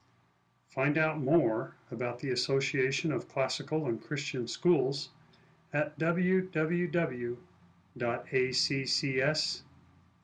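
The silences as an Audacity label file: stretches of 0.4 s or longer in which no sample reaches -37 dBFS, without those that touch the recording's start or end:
5.050000	5.740000	silence
7.340000	7.970000	silence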